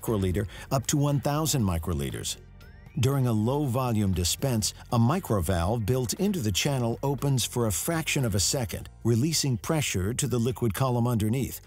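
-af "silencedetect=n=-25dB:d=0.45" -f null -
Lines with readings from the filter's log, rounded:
silence_start: 2.33
silence_end: 2.97 | silence_duration: 0.65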